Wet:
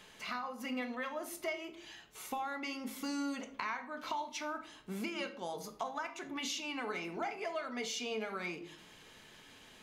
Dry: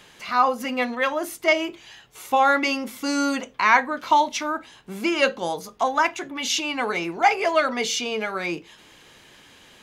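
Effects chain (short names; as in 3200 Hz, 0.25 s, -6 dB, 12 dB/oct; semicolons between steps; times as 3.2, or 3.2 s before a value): compressor 10:1, threshold -29 dBFS, peak gain reduction 18 dB; on a send: reverb RT60 0.60 s, pre-delay 5 ms, DRR 7 dB; on the sum: gain -7.5 dB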